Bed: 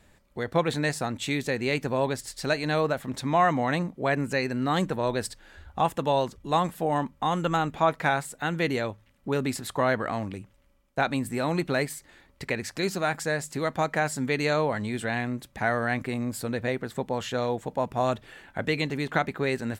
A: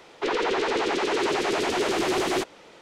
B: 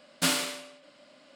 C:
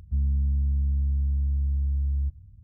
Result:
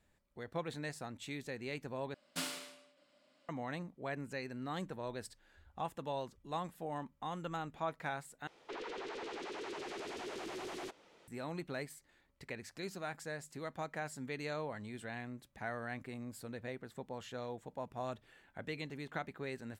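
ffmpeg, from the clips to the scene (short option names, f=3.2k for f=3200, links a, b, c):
-filter_complex "[0:a]volume=-15.5dB[a];[1:a]acompressor=threshold=-26dB:ratio=6:attack=3.2:release=140:knee=1:detection=peak[b];[a]asplit=3[c][d][e];[c]atrim=end=2.144[f];[2:a]atrim=end=1.35,asetpts=PTS-STARTPTS,volume=-14dB[g];[d]atrim=start=3.486:end=8.474[h];[b]atrim=end=2.81,asetpts=PTS-STARTPTS,volume=-14.5dB[i];[e]atrim=start=11.276[j];[f][g]acrossfade=d=0.004:c1=hsin:c2=hsin[k];[k][h]acrossfade=d=0.004:c1=hsin:c2=hsin[l];[l][i]acrossfade=d=0.004:c1=hsin:c2=hsin[m];[m][j]acrossfade=d=0.004:c1=hsin:c2=hsin"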